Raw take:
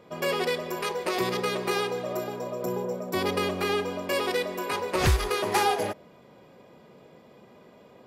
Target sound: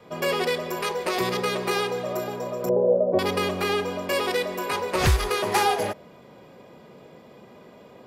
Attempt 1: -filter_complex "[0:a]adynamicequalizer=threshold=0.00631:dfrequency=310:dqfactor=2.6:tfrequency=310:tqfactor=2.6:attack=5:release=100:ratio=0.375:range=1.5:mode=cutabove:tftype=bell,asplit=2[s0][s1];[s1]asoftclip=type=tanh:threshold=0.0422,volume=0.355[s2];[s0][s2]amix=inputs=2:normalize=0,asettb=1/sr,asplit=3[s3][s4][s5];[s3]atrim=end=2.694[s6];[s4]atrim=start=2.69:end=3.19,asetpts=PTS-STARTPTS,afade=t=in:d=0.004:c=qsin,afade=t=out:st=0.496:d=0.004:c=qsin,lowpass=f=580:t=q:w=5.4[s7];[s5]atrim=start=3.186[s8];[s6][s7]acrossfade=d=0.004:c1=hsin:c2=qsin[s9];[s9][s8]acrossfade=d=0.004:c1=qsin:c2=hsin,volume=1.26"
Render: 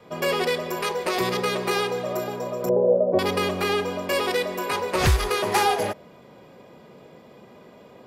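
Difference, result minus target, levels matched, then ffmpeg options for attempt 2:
saturation: distortion -5 dB
-filter_complex "[0:a]adynamicequalizer=threshold=0.00631:dfrequency=310:dqfactor=2.6:tfrequency=310:tqfactor=2.6:attack=5:release=100:ratio=0.375:range=1.5:mode=cutabove:tftype=bell,asplit=2[s0][s1];[s1]asoftclip=type=tanh:threshold=0.0126,volume=0.355[s2];[s0][s2]amix=inputs=2:normalize=0,asettb=1/sr,asplit=3[s3][s4][s5];[s3]atrim=end=2.694[s6];[s4]atrim=start=2.69:end=3.19,asetpts=PTS-STARTPTS,afade=t=in:d=0.004:c=qsin,afade=t=out:st=0.496:d=0.004:c=qsin,lowpass=f=580:t=q:w=5.4[s7];[s5]atrim=start=3.186[s8];[s6][s7]acrossfade=d=0.004:c1=hsin:c2=qsin[s9];[s9][s8]acrossfade=d=0.004:c1=qsin:c2=hsin,volume=1.26"

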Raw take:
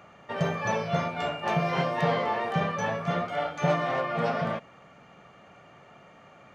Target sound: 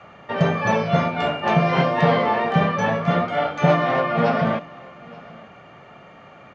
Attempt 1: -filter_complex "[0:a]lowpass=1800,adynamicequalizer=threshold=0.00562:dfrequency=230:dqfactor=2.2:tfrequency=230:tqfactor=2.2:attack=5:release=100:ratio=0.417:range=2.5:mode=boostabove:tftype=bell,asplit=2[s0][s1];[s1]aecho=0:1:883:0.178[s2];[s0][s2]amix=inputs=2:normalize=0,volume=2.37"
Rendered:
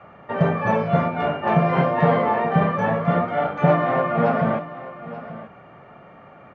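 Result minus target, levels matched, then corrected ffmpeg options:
4 kHz band -9.0 dB; echo-to-direct +7.5 dB
-filter_complex "[0:a]lowpass=4700,adynamicequalizer=threshold=0.00562:dfrequency=230:dqfactor=2.2:tfrequency=230:tqfactor=2.2:attack=5:release=100:ratio=0.417:range=2.5:mode=boostabove:tftype=bell,asplit=2[s0][s1];[s1]aecho=0:1:883:0.075[s2];[s0][s2]amix=inputs=2:normalize=0,volume=2.37"

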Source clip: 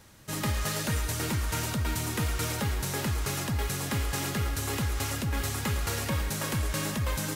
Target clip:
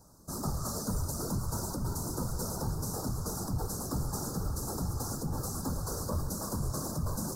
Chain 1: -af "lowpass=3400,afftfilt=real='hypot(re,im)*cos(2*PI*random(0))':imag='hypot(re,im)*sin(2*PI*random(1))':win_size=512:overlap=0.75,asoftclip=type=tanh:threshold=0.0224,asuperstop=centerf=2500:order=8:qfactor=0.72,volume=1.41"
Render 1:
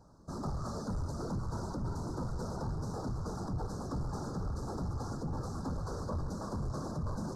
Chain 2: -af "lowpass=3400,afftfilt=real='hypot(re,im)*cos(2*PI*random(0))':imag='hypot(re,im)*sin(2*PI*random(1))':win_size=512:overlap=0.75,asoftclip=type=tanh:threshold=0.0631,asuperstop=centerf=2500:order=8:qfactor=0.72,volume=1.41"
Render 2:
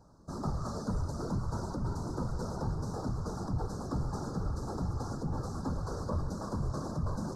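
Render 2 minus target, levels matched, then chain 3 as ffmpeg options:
4 kHz band -6.5 dB
-af "afftfilt=real='hypot(re,im)*cos(2*PI*random(0))':imag='hypot(re,im)*sin(2*PI*random(1))':win_size=512:overlap=0.75,asoftclip=type=tanh:threshold=0.0631,asuperstop=centerf=2500:order=8:qfactor=0.72,volume=1.41"

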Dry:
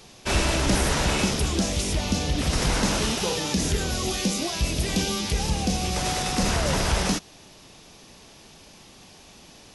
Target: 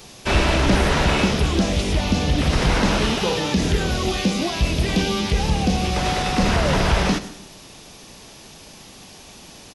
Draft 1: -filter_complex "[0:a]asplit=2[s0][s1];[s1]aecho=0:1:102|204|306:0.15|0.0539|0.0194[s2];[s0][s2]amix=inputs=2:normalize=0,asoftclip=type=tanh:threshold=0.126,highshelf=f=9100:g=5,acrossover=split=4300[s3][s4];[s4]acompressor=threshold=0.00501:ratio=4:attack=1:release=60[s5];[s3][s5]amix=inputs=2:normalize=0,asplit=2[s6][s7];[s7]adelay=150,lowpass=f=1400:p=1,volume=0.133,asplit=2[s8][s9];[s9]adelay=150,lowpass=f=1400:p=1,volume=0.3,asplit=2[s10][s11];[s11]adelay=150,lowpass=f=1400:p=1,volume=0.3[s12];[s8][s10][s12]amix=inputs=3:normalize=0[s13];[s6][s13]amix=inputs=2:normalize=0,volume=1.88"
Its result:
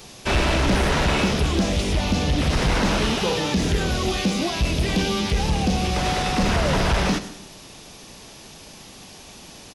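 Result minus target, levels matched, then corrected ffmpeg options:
saturation: distortion +20 dB
-filter_complex "[0:a]asplit=2[s0][s1];[s1]aecho=0:1:102|204|306:0.15|0.0539|0.0194[s2];[s0][s2]amix=inputs=2:normalize=0,asoftclip=type=tanh:threshold=0.501,highshelf=f=9100:g=5,acrossover=split=4300[s3][s4];[s4]acompressor=threshold=0.00501:ratio=4:attack=1:release=60[s5];[s3][s5]amix=inputs=2:normalize=0,asplit=2[s6][s7];[s7]adelay=150,lowpass=f=1400:p=1,volume=0.133,asplit=2[s8][s9];[s9]adelay=150,lowpass=f=1400:p=1,volume=0.3,asplit=2[s10][s11];[s11]adelay=150,lowpass=f=1400:p=1,volume=0.3[s12];[s8][s10][s12]amix=inputs=3:normalize=0[s13];[s6][s13]amix=inputs=2:normalize=0,volume=1.88"

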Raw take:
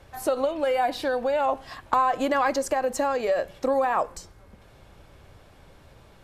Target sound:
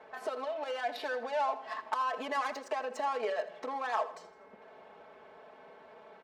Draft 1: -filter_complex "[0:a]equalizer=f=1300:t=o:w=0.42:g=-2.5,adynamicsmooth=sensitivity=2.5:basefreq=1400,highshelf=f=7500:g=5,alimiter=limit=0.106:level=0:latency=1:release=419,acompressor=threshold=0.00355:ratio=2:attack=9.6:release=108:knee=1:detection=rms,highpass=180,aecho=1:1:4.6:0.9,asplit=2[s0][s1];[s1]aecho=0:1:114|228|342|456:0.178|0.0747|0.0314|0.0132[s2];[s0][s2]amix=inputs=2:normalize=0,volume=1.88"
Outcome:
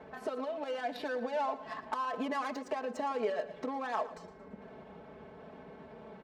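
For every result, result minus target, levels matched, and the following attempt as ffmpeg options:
250 Hz band +10.0 dB; echo 33 ms late; compression: peak gain reduction +3 dB
-filter_complex "[0:a]equalizer=f=1300:t=o:w=0.42:g=-2.5,adynamicsmooth=sensitivity=2.5:basefreq=1400,highshelf=f=7500:g=5,alimiter=limit=0.106:level=0:latency=1:release=419,acompressor=threshold=0.00355:ratio=2:attack=9.6:release=108:knee=1:detection=rms,highpass=550,aecho=1:1:4.6:0.9,asplit=2[s0][s1];[s1]aecho=0:1:114|228|342|456:0.178|0.0747|0.0314|0.0132[s2];[s0][s2]amix=inputs=2:normalize=0,volume=1.88"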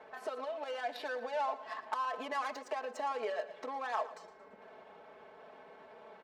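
echo 33 ms late; compression: peak gain reduction +3 dB
-filter_complex "[0:a]equalizer=f=1300:t=o:w=0.42:g=-2.5,adynamicsmooth=sensitivity=2.5:basefreq=1400,highshelf=f=7500:g=5,alimiter=limit=0.106:level=0:latency=1:release=419,acompressor=threshold=0.00355:ratio=2:attack=9.6:release=108:knee=1:detection=rms,highpass=550,aecho=1:1:4.6:0.9,asplit=2[s0][s1];[s1]aecho=0:1:81|162|243|324:0.178|0.0747|0.0314|0.0132[s2];[s0][s2]amix=inputs=2:normalize=0,volume=1.88"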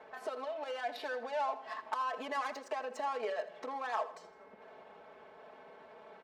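compression: peak gain reduction +3 dB
-filter_complex "[0:a]equalizer=f=1300:t=o:w=0.42:g=-2.5,adynamicsmooth=sensitivity=2.5:basefreq=1400,highshelf=f=7500:g=5,alimiter=limit=0.106:level=0:latency=1:release=419,acompressor=threshold=0.0075:ratio=2:attack=9.6:release=108:knee=1:detection=rms,highpass=550,aecho=1:1:4.6:0.9,asplit=2[s0][s1];[s1]aecho=0:1:81|162|243|324:0.178|0.0747|0.0314|0.0132[s2];[s0][s2]amix=inputs=2:normalize=0,volume=1.88"

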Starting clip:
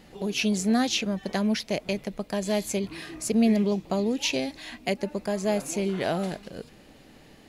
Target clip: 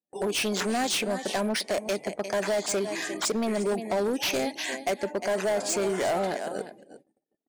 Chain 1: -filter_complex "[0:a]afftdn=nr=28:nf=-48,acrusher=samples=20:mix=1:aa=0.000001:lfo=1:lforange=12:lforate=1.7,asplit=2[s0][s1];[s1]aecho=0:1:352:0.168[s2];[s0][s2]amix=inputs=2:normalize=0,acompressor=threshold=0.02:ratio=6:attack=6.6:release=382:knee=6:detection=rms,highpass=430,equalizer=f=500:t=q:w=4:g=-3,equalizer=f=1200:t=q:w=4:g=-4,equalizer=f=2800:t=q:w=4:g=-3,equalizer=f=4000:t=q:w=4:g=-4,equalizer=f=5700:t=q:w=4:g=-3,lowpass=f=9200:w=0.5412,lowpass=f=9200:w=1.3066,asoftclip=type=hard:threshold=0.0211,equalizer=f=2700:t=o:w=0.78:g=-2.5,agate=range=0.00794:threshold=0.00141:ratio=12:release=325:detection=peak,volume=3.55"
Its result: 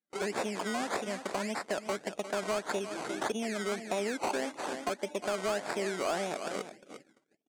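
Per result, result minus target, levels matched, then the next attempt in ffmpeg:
compression: peak gain reduction +9.5 dB; decimation with a swept rate: distortion +9 dB
-filter_complex "[0:a]afftdn=nr=28:nf=-48,acrusher=samples=20:mix=1:aa=0.000001:lfo=1:lforange=12:lforate=1.7,asplit=2[s0][s1];[s1]aecho=0:1:352:0.168[s2];[s0][s2]amix=inputs=2:normalize=0,acompressor=threshold=0.075:ratio=6:attack=6.6:release=382:knee=6:detection=rms,highpass=430,equalizer=f=500:t=q:w=4:g=-3,equalizer=f=1200:t=q:w=4:g=-4,equalizer=f=2800:t=q:w=4:g=-3,equalizer=f=4000:t=q:w=4:g=-4,equalizer=f=5700:t=q:w=4:g=-3,lowpass=f=9200:w=0.5412,lowpass=f=9200:w=1.3066,asoftclip=type=hard:threshold=0.0211,equalizer=f=2700:t=o:w=0.78:g=-2.5,agate=range=0.00794:threshold=0.00141:ratio=12:release=325:detection=peak,volume=3.55"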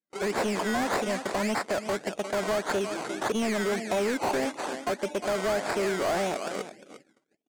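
decimation with a swept rate: distortion +9 dB
-filter_complex "[0:a]afftdn=nr=28:nf=-48,acrusher=samples=4:mix=1:aa=0.000001:lfo=1:lforange=2.4:lforate=1.7,asplit=2[s0][s1];[s1]aecho=0:1:352:0.168[s2];[s0][s2]amix=inputs=2:normalize=0,acompressor=threshold=0.075:ratio=6:attack=6.6:release=382:knee=6:detection=rms,highpass=430,equalizer=f=500:t=q:w=4:g=-3,equalizer=f=1200:t=q:w=4:g=-4,equalizer=f=2800:t=q:w=4:g=-3,equalizer=f=4000:t=q:w=4:g=-4,equalizer=f=5700:t=q:w=4:g=-3,lowpass=f=9200:w=0.5412,lowpass=f=9200:w=1.3066,asoftclip=type=hard:threshold=0.0211,equalizer=f=2700:t=o:w=0.78:g=-2.5,agate=range=0.00794:threshold=0.00141:ratio=12:release=325:detection=peak,volume=3.55"

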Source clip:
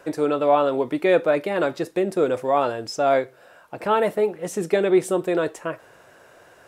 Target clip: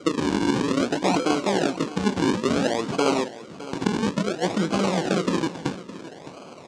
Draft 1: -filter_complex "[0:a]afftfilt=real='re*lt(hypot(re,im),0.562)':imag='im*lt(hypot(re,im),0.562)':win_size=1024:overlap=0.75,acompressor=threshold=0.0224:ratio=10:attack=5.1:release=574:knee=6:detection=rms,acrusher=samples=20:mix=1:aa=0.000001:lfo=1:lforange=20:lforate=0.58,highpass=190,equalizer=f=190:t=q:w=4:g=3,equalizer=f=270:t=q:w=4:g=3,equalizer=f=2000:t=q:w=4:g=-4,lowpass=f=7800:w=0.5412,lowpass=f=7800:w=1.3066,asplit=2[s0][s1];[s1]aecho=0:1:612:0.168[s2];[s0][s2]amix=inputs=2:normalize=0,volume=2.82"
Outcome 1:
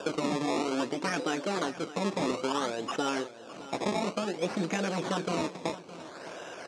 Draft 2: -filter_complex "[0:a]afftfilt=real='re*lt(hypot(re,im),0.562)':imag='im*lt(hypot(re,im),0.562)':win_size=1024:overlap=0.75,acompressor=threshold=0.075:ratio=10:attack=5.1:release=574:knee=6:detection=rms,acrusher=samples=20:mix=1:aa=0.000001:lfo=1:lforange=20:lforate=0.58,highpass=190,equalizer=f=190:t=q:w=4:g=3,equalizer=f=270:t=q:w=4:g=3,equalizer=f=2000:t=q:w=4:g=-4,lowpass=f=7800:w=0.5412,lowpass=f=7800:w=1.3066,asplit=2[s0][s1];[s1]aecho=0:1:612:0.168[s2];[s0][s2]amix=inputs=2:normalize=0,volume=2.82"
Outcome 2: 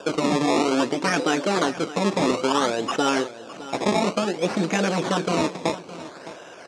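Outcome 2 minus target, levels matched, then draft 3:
decimation with a swept rate: distortion -10 dB
-filter_complex "[0:a]afftfilt=real='re*lt(hypot(re,im),0.562)':imag='im*lt(hypot(re,im),0.562)':win_size=1024:overlap=0.75,acompressor=threshold=0.075:ratio=10:attack=5.1:release=574:knee=6:detection=rms,acrusher=samples=47:mix=1:aa=0.000001:lfo=1:lforange=47:lforate=0.58,highpass=190,equalizer=f=190:t=q:w=4:g=3,equalizer=f=270:t=q:w=4:g=3,equalizer=f=2000:t=q:w=4:g=-4,lowpass=f=7800:w=0.5412,lowpass=f=7800:w=1.3066,asplit=2[s0][s1];[s1]aecho=0:1:612:0.168[s2];[s0][s2]amix=inputs=2:normalize=0,volume=2.82"

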